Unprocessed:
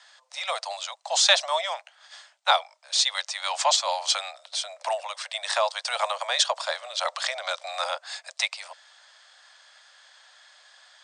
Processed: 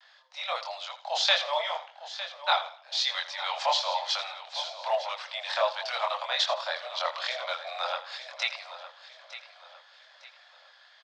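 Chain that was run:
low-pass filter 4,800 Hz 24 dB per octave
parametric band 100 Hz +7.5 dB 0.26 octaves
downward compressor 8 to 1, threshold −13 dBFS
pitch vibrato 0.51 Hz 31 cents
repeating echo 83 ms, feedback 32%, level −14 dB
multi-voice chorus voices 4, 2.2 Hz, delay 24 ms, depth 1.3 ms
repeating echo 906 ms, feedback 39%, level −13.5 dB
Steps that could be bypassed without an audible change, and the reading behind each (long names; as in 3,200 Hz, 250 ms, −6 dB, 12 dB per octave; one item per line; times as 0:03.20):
parametric band 100 Hz: nothing at its input below 450 Hz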